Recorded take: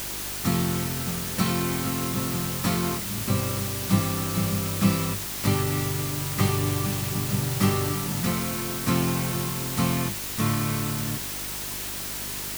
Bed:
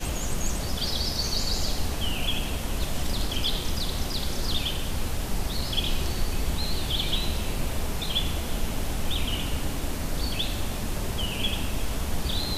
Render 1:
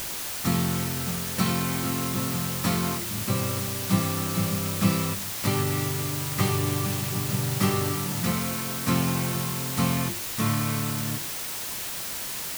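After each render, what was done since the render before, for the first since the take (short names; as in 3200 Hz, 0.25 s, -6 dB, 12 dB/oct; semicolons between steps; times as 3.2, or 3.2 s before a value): de-hum 50 Hz, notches 8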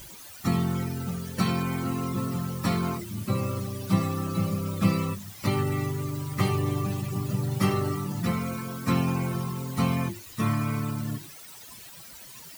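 denoiser 16 dB, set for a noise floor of -33 dBFS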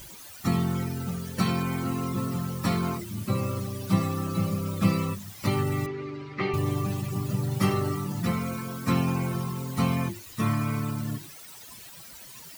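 5.86–6.54 speaker cabinet 240–4000 Hz, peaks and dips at 390 Hz +4 dB, 610 Hz -5 dB, 1000 Hz -5 dB, 2200 Hz +5 dB, 3300 Hz -5 dB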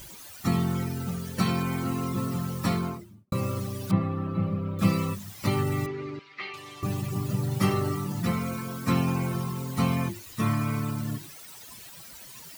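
2.64–3.32 studio fade out; 3.91–4.79 air absorption 500 m; 6.19–6.83 band-pass 3300 Hz, Q 0.86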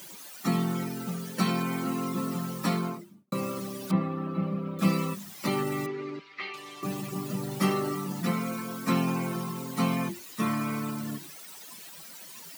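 steep high-pass 160 Hz 36 dB/oct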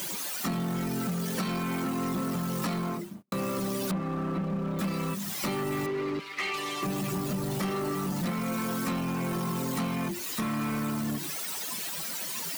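compressor, threshold -36 dBFS, peak gain reduction 16.5 dB; sample leveller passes 3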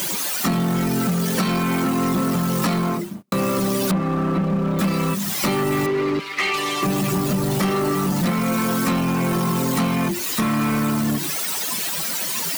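gain +10 dB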